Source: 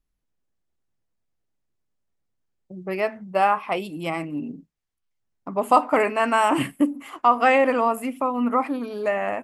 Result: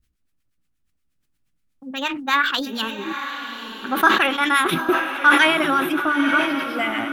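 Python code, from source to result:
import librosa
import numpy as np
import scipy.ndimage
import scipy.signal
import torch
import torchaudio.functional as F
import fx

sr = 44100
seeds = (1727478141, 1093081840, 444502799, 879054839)

p1 = fx.speed_glide(x, sr, from_pct=154, to_pct=111)
p2 = fx.band_shelf(p1, sr, hz=630.0, db=-10.0, octaves=1.7)
p3 = fx.transient(p2, sr, attack_db=0, sustain_db=-7)
p4 = fx.harmonic_tremolo(p3, sr, hz=8.4, depth_pct=70, crossover_hz=1200.0)
p5 = p4 + fx.echo_diffused(p4, sr, ms=923, feedback_pct=41, wet_db=-7.5, dry=0)
p6 = fx.sustainer(p5, sr, db_per_s=69.0)
y = p6 * librosa.db_to_amplitude(8.5)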